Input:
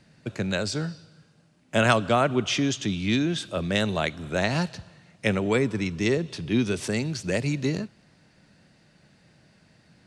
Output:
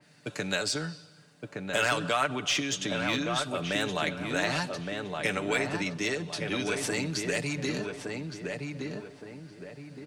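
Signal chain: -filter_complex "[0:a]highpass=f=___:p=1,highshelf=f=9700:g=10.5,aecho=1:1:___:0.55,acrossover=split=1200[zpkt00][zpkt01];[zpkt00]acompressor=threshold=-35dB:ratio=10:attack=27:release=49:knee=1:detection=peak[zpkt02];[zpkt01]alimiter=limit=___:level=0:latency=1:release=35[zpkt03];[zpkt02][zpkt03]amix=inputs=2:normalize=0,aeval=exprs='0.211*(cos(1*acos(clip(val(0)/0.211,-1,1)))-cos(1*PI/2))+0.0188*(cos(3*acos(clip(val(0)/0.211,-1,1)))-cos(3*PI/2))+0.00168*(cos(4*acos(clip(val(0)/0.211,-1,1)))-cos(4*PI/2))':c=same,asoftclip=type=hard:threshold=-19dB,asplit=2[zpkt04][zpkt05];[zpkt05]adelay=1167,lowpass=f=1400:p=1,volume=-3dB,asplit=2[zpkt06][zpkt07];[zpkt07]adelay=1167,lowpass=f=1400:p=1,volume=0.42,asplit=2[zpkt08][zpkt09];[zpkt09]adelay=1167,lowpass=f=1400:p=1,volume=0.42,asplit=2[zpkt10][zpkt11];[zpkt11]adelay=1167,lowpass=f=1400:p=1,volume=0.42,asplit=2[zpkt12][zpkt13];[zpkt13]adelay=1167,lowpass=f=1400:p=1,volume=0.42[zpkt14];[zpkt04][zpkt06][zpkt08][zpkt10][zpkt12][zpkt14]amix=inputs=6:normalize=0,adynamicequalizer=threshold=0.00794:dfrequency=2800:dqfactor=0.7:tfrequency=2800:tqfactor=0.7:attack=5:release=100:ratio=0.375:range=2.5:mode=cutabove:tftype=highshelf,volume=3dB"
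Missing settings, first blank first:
360, 6.8, -16dB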